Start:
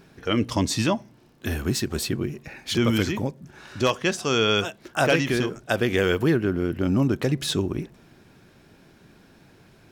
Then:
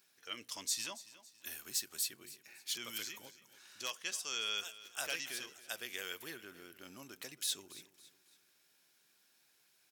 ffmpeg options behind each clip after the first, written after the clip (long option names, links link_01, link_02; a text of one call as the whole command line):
ffmpeg -i in.wav -af "aderivative,aecho=1:1:278|556|834:0.141|0.0551|0.0215,volume=-5dB" out.wav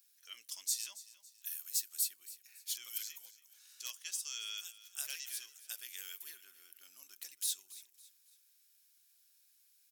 ffmpeg -i in.wav -af "aderivative,volume=1.5dB" out.wav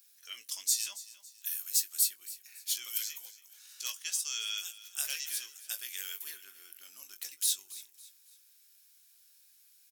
ffmpeg -i in.wav -filter_complex "[0:a]asplit=2[link_01][link_02];[link_02]adelay=20,volume=-9dB[link_03];[link_01][link_03]amix=inputs=2:normalize=0,volume=6dB" out.wav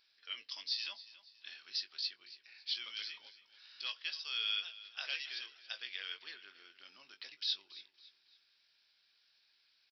ffmpeg -i in.wav -af "aresample=11025,aresample=44100,volume=1.5dB" out.wav